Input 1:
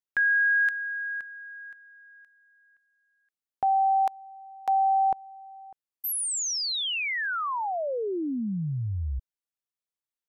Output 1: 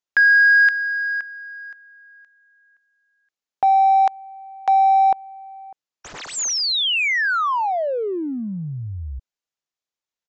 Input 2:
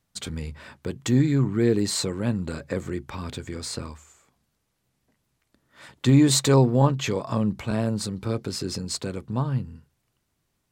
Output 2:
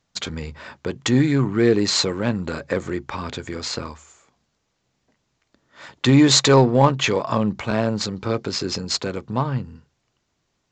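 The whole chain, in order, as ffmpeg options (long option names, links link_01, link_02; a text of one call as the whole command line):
ffmpeg -i in.wav -filter_complex "[0:a]crystalizer=i=1:c=0,asplit=2[link_01][link_02];[link_02]adynamicsmooth=sensitivity=5.5:basefreq=1100,volume=-1.5dB[link_03];[link_01][link_03]amix=inputs=2:normalize=0,asplit=2[link_04][link_05];[link_05]highpass=frequency=720:poles=1,volume=9dB,asoftclip=type=tanh:threshold=-1dB[link_06];[link_04][link_06]amix=inputs=2:normalize=0,lowpass=frequency=5100:poles=1,volume=-6dB,aresample=16000,aresample=44100" out.wav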